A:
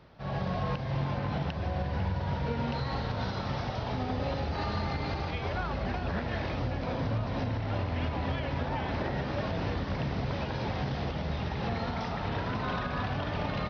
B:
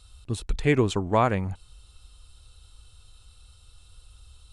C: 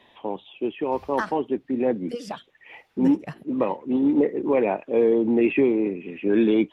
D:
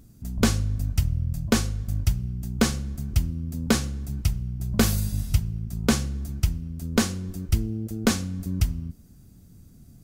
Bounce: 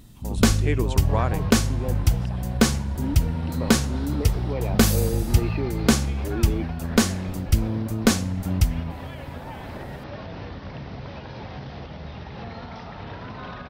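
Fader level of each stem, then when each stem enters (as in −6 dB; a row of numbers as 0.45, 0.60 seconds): −4.0, −5.0, −10.5, +3.0 decibels; 0.75, 0.00, 0.00, 0.00 seconds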